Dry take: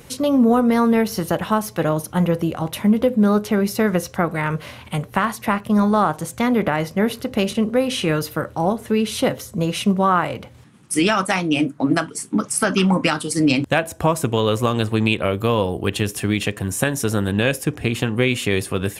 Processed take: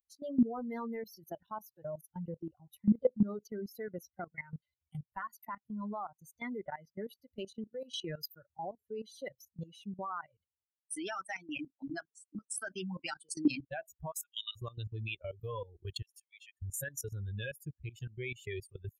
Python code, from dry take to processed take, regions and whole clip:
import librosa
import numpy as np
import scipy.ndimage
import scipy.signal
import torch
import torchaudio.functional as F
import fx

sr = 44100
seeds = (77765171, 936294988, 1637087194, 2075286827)

y = fx.chain(x, sr, fx.steep_highpass(hz=1100.0, slope=96),
    fx.high_shelf(hz=3600.0, db=5.0),
    fx.band_squash(depth_pct=40), at=(14.11, 14.56))
y = fx.chain(y, sr, fx.steep_highpass(hz=1800.0, slope=48),
    fx.high_shelf(hz=8000.0, db=-4.0),
    fx.band_widen(depth_pct=70), at=(16.02, 16.62))
y = fx.bin_expand(y, sr, power=3.0)
y = fx.high_shelf(y, sr, hz=12000.0, db=7.0)
y = fx.level_steps(y, sr, step_db=17)
y = F.gain(torch.from_numpy(y), -4.5).numpy()